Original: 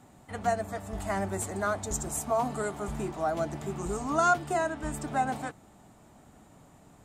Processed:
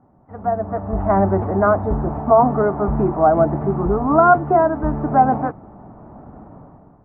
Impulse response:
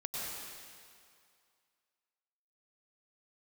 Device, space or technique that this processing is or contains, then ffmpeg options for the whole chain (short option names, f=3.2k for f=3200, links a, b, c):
action camera in a waterproof case: -af "lowpass=f=1.2k:w=0.5412,lowpass=f=1.2k:w=1.3066,dynaudnorm=f=180:g=7:m=15.5dB,volume=1dB" -ar 24000 -c:a aac -b:a 48k